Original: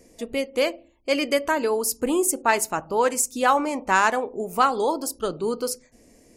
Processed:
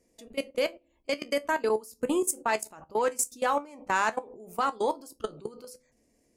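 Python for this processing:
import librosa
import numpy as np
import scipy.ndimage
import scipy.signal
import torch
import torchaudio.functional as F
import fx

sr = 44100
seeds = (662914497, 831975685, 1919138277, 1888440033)

y = fx.cheby_harmonics(x, sr, harmonics=(2, 5), levels_db=(-26, -32), full_scale_db=-5.5)
y = fx.level_steps(y, sr, step_db=22)
y = fx.comb_fb(y, sr, f0_hz=72.0, decay_s=0.15, harmonics='all', damping=0.0, mix_pct=60)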